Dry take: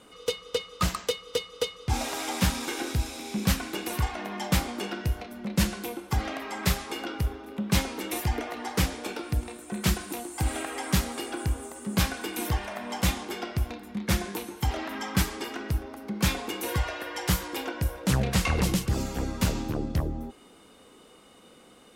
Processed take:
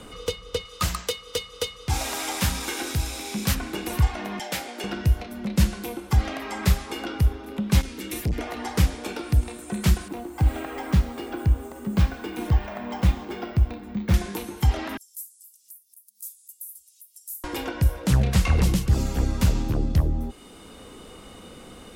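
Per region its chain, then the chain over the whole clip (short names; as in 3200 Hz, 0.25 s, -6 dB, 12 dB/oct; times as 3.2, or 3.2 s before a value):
0.65–3.55 tilt +2 dB/oct + notches 60/120/180/240 Hz
4.39–4.84 HPF 510 Hz + bell 1100 Hz -11 dB 0.48 oct
7.81–8.39 bell 790 Hz -12.5 dB 1.4 oct + hard clip -20.5 dBFS + core saturation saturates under 260 Hz
10.08–14.14 LPF 1400 Hz 6 dB/oct + careless resampling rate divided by 2×, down none, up hold
14.97–17.44 inverse Chebyshev high-pass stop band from 1800 Hz, stop band 80 dB + upward compressor, threshold -49 dBFS
whole clip: low shelf 120 Hz +12 dB; three-band squash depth 40%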